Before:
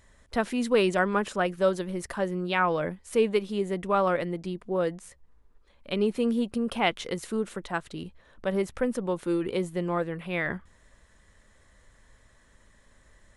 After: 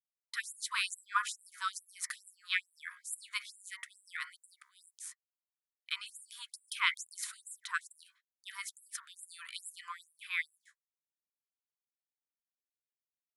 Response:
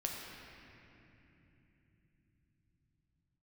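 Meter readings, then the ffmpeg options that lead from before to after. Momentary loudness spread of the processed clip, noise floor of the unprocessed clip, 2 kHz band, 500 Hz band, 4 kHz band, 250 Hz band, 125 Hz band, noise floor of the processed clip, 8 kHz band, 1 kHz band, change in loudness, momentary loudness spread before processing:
14 LU, −61 dBFS, −4.0 dB, below −40 dB, −2.0 dB, below −40 dB, below −40 dB, below −85 dBFS, +3.0 dB, −11.5 dB, −10.5 dB, 9 LU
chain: -filter_complex "[0:a]bandreject=frequency=68.21:width_type=h:width=4,bandreject=frequency=136.42:width_type=h:width=4,bandreject=frequency=204.63:width_type=h:width=4,bandreject=frequency=272.84:width_type=h:width=4,bandreject=frequency=341.05:width_type=h:width=4,bandreject=frequency=409.26:width_type=h:width=4,bandreject=frequency=477.47:width_type=h:width=4,bandreject=frequency=545.68:width_type=h:width=4,bandreject=frequency=613.89:width_type=h:width=4,bandreject=frequency=682.1:width_type=h:width=4,bandreject=frequency=750.31:width_type=h:width=4,bandreject=frequency=818.52:width_type=h:width=4,bandreject=frequency=886.73:width_type=h:width=4,bandreject=frequency=954.94:width_type=h:width=4,bandreject=frequency=1023.15:width_type=h:width=4,bandreject=frequency=1091.36:width_type=h:width=4,bandreject=frequency=1159.57:width_type=h:width=4,bandreject=frequency=1227.78:width_type=h:width=4,bandreject=frequency=1295.99:width_type=h:width=4,bandreject=frequency=1364.2:width_type=h:width=4,bandreject=frequency=1432.41:width_type=h:width=4,bandreject=frequency=1500.62:width_type=h:width=4,bandreject=frequency=1568.83:width_type=h:width=4,bandreject=frequency=1637.04:width_type=h:width=4,bandreject=frequency=1705.25:width_type=h:width=4,bandreject=frequency=1773.46:width_type=h:width=4,bandreject=frequency=1841.67:width_type=h:width=4,bandreject=frequency=1909.88:width_type=h:width=4,bandreject=frequency=1978.09:width_type=h:width=4,bandreject=frequency=2046.3:width_type=h:width=4,bandreject=frequency=2114.51:width_type=h:width=4,bandreject=frequency=2182.72:width_type=h:width=4,bandreject=frequency=2250.93:width_type=h:width=4,agate=range=-51dB:threshold=-47dB:ratio=16:detection=peak,highshelf=frequency=5600:gain=5,bandreject=frequency=2800:width=9.2,acrossover=split=120[link_01][link_02];[link_01]acompressor=threshold=-55dB:ratio=16[link_03];[link_03][link_02]amix=inputs=2:normalize=0,afftfilt=real='re*gte(b*sr/1024,920*pow(7400/920,0.5+0.5*sin(2*PI*2.3*pts/sr)))':imag='im*gte(b*sr/1024,920*pow(7400/920,0.5+0.5*sin(2*PI*2.3*pts/sr)))':win_size=1024:overlap=0.75"

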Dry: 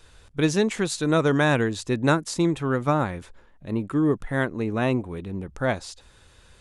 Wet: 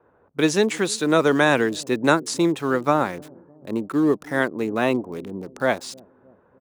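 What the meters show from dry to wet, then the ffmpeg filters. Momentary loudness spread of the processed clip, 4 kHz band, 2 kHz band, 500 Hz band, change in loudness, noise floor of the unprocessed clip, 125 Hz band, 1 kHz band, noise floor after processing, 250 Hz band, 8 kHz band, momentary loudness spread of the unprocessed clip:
13 LU, +4.0 dB, +4.0 dB, +3.5 dB, +2.5 dB, −55 dBFS, −5.5 dB, +4.0 dB, −59 dBFS, +2.0 dB, +4.0 dB, 12 LU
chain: -filter_complex "[0:a]highpass=240,acrossover=split=570|1200[link_01][link_02][link_03];[link_01]aecho=1:1:306|612|918|1224:0.0891|0.0463|0.0241|0.0125[link_04];[link_03]aeval=exprs='val(0)*gte(abs(val(0)),0.00501)':channel_layout=same[link_05];[link_04][link_02][link_05]amix=inputs=3:normalize=0,volume=4dB"

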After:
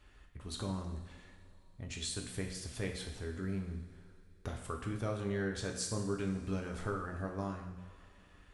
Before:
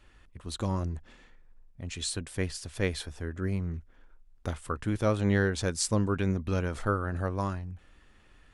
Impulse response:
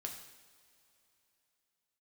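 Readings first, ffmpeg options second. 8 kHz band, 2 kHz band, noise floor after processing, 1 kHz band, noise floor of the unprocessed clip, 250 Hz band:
−6.5 dB, −9.0 dB, −61 dBFS, −8.5 dB, −59 dBFS, −7.5 dB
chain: -filter_complex "[0:a]acompressor=threshold=-36dB:ratio=2[link_01];[1:a]atrim=start_sample=2205[link_02];[link_01][link_02]afir=irnorm=-1:irlink=0"

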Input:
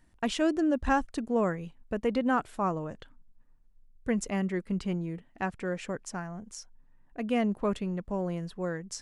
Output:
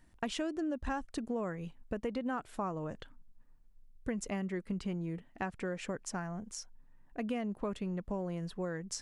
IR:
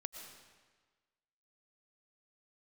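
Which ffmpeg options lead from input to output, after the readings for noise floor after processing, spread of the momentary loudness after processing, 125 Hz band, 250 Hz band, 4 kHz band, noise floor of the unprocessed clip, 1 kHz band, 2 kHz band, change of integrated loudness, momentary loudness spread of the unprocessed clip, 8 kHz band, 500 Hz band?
−62 dBFS, 8 LU, −5.0 dB, −7.0 dB, −4.5 dB, −62 dBFS, −8.5 dB, −7.5 dB, −7.5 dB, 12 LU, −2.0 dB, −7.5 dB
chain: -af "acompressor=threshold=-33dB:ratio=6"

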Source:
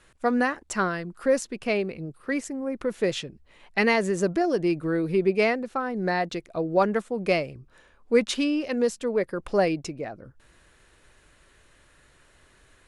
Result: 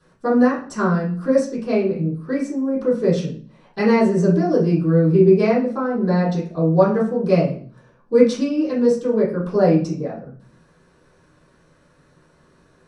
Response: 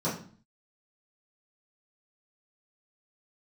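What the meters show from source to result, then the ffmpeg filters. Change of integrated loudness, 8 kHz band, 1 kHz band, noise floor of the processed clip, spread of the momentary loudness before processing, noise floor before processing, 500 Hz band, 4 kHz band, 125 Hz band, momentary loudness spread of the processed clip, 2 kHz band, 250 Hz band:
+7.5 dB, can't be measured, +2.5 dB, −56 dBFS, 9 LU, −59 dBFS, +7.0 dB, −3.5 dB, +14.5 dB, 9 LU, −2.5 dB, +9.0 dB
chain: -filter_complex "[1:a]atrim=start_sample=2205[link_01];[0:a][link_01]afir=irnorm=-1:irlink=0,volume=-7dB"

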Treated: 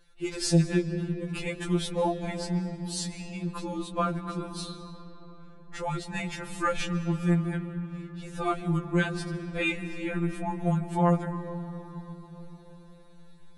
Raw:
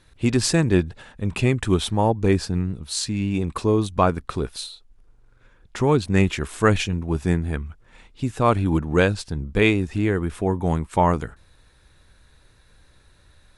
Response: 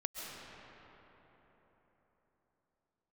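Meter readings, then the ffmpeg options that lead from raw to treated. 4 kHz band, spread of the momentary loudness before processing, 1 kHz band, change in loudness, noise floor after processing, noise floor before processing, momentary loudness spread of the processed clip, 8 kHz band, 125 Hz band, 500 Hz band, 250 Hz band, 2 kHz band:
−7.5 dB, 11 LU, −7.5 dB, −8.0 dB, −49 dBFS, −56 dBFS, 16 LU, −7.0 dB, −7.0 dB, −9.5 dB, −6.5 dB, −7.0 dB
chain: -filter_complex "[0:a]asplit=2[link_01][link_02];[1:a]atrim=start_sample=2205,lowshelf=frequency=160:gain=11,adelay=13[link_03];[link_02][link_03]afir=irnorm=-1:irlink=0,volume=-10.5dB[link_04];[link_01][link_04]amix=inputs=2:normalize=0,afftfilt=real='re*2.83*eq(mod(b,8),0)':imag='im*2.83*eq(mod(b,8),0)':win_size=2048:overlap=0.75,volume=-5dB"

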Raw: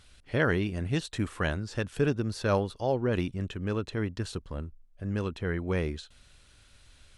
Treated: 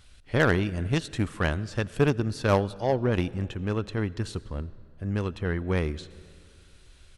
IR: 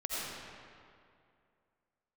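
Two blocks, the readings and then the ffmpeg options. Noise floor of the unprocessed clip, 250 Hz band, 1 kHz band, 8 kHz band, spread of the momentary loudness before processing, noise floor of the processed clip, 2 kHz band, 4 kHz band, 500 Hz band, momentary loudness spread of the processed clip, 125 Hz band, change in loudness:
−59 dBFS, +2.5 dB, +4.0 dB, +1.5 dB, 10 LU, −54 dBFS, +3.0 dB, +2.5 dB, +2.5 dB, 11 LU, +4.0 dB, +3.0 dB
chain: -filter_complex "[0:a]asplit=2[link_01][link_02];[1:a]atrim=start_sample=2205[link_03];[link_02][link_03]afir=irnorm=-1:irlink=0,volume=-21dB[link_04];[link_01][link_04]amix=inputs=2:normalize=0,volume=15dB,asoftclip=hard,volume=-15dB,aresample=32000,aresample=44100,aeval=exprs='0.188*(cos(1*acos(clip(val(0)/0.188,-1,1)))-cos(1*PI/2))+0.0266*(cos(3*acos(clip(val(0)/0.188,-1,1)))-cos(3*PI/2))':channel_layout=same,lowshelf=frequency=110:gain=4.5,volume=4.5dB"

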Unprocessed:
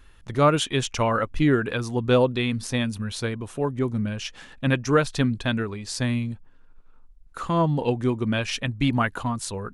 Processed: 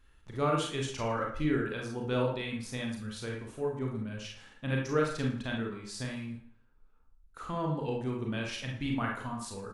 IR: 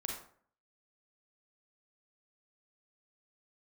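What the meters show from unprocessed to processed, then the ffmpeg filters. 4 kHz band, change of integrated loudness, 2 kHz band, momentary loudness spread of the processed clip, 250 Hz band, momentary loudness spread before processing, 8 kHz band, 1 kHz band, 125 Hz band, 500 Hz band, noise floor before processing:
−10.5 dB, −9.5 dB, −9.0 dB, 10 LU, −9.5 dB, 10 LU, −10.5 dB, −9.5 dB, −10.0 dB, −9.0 dB, −51 dBFS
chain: -filter_complex "[0:a]aecho=1:1:113|226|339:0.141|0.0438|0.0136[link_01];[1:a]atrim=start_sample=2205,asetrate=52920,aresample=44100[link_02];[link_01][link_02]afir=irnorm=-1:irlink=0,volume=-8.5dB"

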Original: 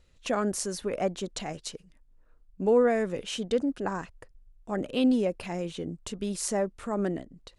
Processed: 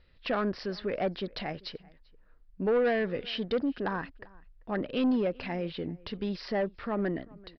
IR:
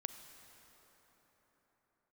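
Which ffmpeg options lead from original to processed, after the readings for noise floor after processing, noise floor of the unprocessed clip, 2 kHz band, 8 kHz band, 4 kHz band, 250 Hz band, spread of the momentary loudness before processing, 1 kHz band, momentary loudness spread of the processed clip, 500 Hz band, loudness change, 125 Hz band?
−60 dBFS, −61 dBFS, +2.0 dB, below −25 dB, −0.5 dB, −2.0 dB, 13 LU, −1.5 dB, 11 LU, −2.5 dB, −2.5 dB, −1.0 dB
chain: -filter_complex "[0:a]equalizer=frequency=1800:width=2.6:gain=6,aresample=11025,asoftclip=type=tanh:threshold=-21dB,aresample=44100,asplit=2[link_01][link_02];[link_02]adelay=390.7,volume=-24dB,highshelf=frequency=4000:gain=-8.79[link_03];[link_01][link_03]amix=inputs=2:normalize=0"

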